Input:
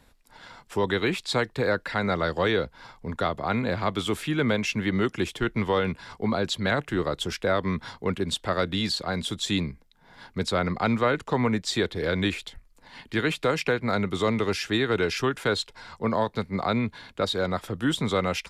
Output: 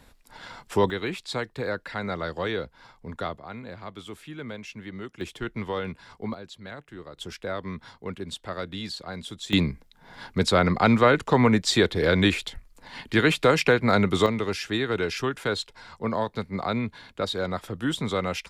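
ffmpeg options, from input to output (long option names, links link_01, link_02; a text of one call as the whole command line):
ffmpeg -i in.wav -af "asetnsamples=nb_out_samples=441:pad=0,asendcmd='0.9 volume volume -5dB;3.37 volume volume -13dB;5.21 volume volume -6dB;6.34 volume volume -15.5dB;7.17 volume volume -7.5dB;9.53 volume volume 5dB;14.26 volume volume -2dB',volume=4dB" out.wav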